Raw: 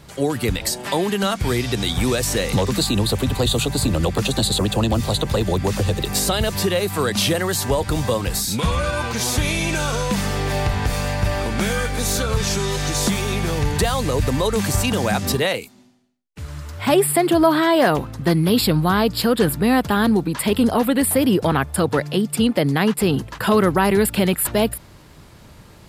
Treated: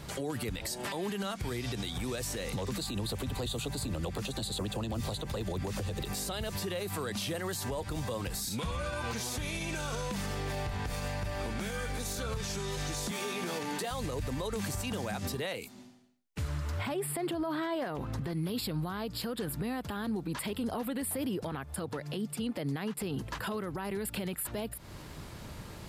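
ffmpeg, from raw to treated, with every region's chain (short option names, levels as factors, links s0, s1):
-filter_complex "[0:a]asettb=1/sr,asplit=3[s0][s1][s2];[s0]atrim=end=13.114[s3];[s1]atrim=start=13.11:end=13.91,asetpts=PTS-STARTPTS,afade=t=in:d=0.004:c=qsin,afade=t=out:st=0.796:d=0.004:c=qsin,highpass=f=190:w=0.5412,highpass=f=190:w=1.3066,asplit=2[s4][s5];[s5]adelay=17,volume=0.473[s6];[s4][s6]amix=inputs=2:normalize=0,atrim=end_sample=35280[s7];[s2]atrim=start=13.906[s8];[s3][s7]acrossfade=d=0.004:c1=hsin:c2=qsin[s9];[s9][s8]acrossfade=d=0.004:c1=qsin:c2=hsin,asettb=1/sr,asplit=3[s10][s11][s12];[s10]atrim=end=16.484[s13];[s11]atrim=start=16.48:end=18.33,asetpts=PTS-STARTPTS,afade=t=in:d=0.004:c=qsin,afade=t=out:st=1.846:d=0.004:c=qsin,highshelf=f=4200:g=-6,acompressor=threshold=0.126:ratio=6:attack=3.2:release=140:knee=1:detection=peak[s14];[s12]atrim=start=18.326[s15];[s13][s14]acrossfade=d=0.004:c1=hsin:c2=qsin[s16];[s16][s15]acrossfade=d=0.004:c1=qsin:c2=hsin,acompressor=threshold=0.0282:ratio=2,alimiter=level_in=1.33:limit=0.0631:level=0:latency=1:release=139,volume=0.75"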